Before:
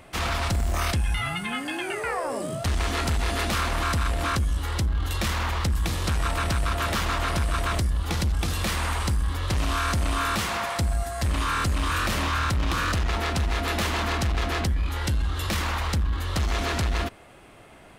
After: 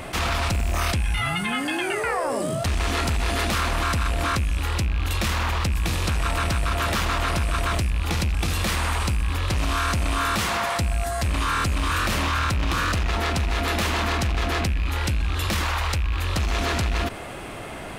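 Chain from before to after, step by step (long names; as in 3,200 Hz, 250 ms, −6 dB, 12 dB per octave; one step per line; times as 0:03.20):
loose part that buzzes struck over −26 dBFS, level −24 dBFS
0:15.64–0:16.22: parametric band 210 Hz −14.5 dB → −8 dB 0.95 octaves
envelope flattener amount 50%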